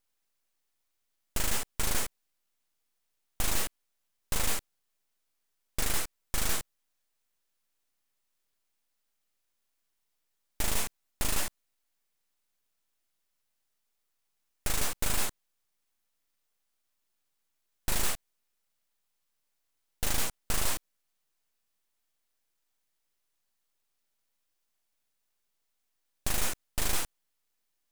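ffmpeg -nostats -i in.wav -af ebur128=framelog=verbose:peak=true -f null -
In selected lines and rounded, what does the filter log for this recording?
Integrated loudness:
  I:         -32.8 LUFS
  Threshold: -42.9 LUFS
Loudness range:
  LRA:         5.1 LU
  Threshold: -57.3 LUFS
  LRA low:   -40.2 LUFS
  LRA high:  -35.1 LUFS
True peak:
  Peak:      -17.5 dBFS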